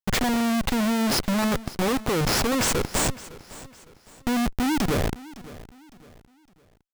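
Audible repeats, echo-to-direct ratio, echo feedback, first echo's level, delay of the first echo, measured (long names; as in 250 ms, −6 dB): 2, −18.0 dB, 37%, −18.5 dB, 559 ms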